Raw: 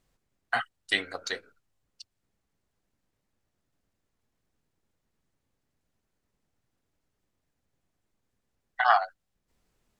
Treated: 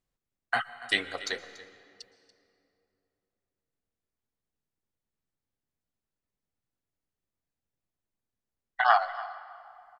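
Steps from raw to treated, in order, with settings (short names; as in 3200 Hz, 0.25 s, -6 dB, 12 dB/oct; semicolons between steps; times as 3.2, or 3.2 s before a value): gate -56 dBFS, range -12 dB; echo 0.286 s -18 dB; reverb RT60 2.9 s, pre-delay 0.11 s, DRR 15.5 dB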